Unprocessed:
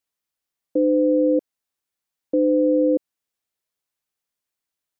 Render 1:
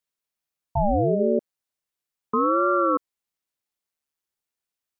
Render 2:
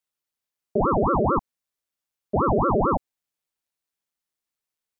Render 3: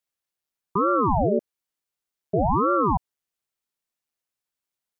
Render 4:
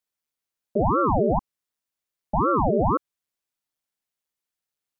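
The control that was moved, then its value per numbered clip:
ring modulator whose carrier an LFO sweeps, at: 0.37, 4.5, 1.1, 2 Hertz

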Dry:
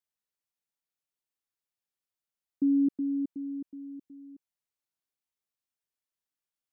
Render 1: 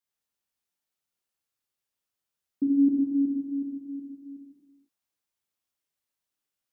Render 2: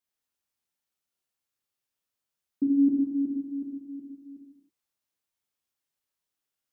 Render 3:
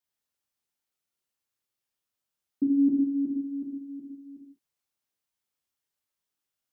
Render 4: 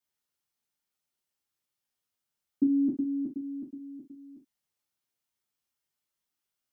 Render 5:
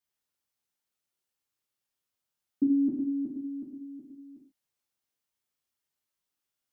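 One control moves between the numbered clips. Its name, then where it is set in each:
reverb whose tail is shaped and stops, gate: 530, 350, 230, 90, 160 milliseconds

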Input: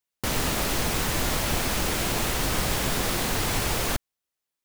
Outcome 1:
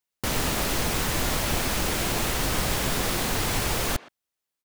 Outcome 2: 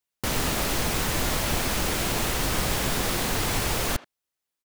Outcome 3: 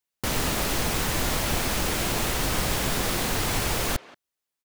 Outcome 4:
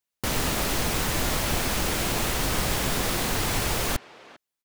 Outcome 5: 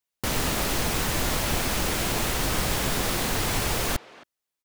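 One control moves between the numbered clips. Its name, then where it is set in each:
far-end echo of a speakerphone, delay time: 120, 80, 180, 400, 270 milliseconds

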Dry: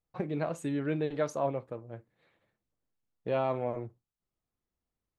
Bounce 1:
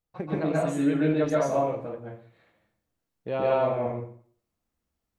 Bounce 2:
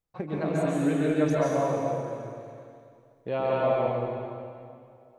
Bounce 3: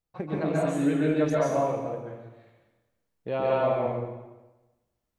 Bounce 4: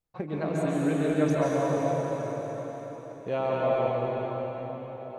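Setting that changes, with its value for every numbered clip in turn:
dense smooth reverb, RT60: 0.52, 2.4, 1.1, 5.2 seconds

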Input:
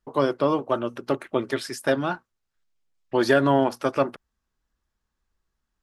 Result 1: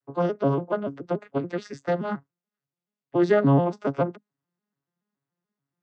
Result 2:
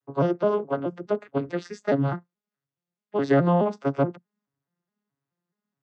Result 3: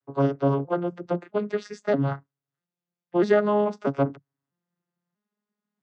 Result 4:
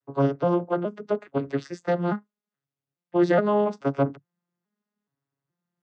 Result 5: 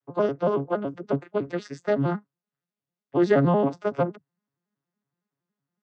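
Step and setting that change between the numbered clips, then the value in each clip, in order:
vocoder with an arpeggio as carrier, a note every: 143, 212, 643, 422, 93 milliseconds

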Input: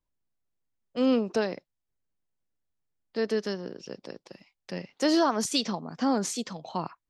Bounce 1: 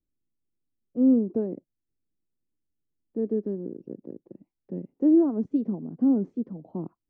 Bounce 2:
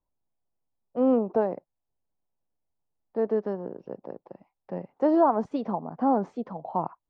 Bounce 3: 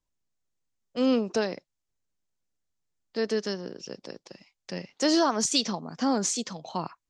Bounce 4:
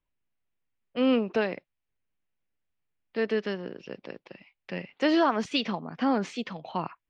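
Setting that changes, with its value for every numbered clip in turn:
low-pass with resonance, frequency: 320, 840, 7,000, 2,600 Hertz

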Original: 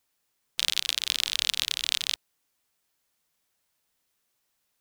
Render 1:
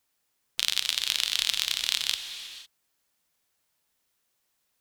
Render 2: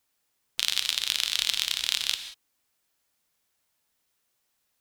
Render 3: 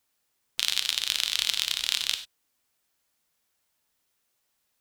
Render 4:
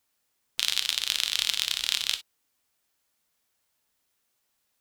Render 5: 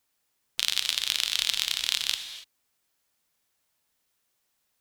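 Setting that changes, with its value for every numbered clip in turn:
reverb whose tail is shaped and stops, gate: 530, 210, 120, 80, 310 milliseconds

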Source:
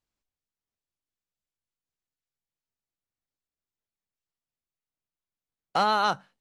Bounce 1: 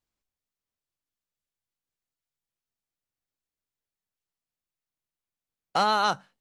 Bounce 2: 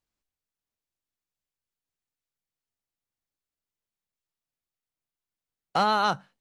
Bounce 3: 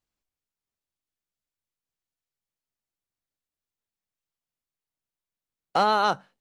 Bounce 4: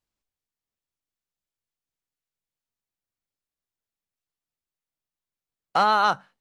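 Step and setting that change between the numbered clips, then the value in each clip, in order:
dynamic equaliser, frequency: 7,400, 130, 440, 1,200 Hertz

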